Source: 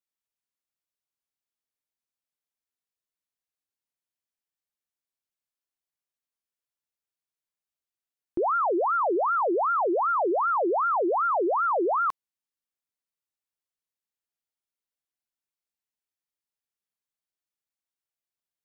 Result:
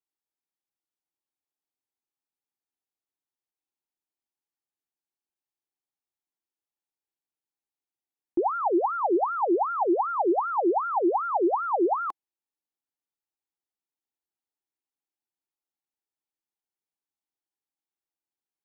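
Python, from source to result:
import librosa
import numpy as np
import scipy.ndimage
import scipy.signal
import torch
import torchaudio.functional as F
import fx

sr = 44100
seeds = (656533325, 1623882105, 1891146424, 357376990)

y = fx.small_body(x, sr, hz=(330.0, 800.0), ring_ms=20, db=12)
y = y * 10.0 ** (-7.5 / 20.0)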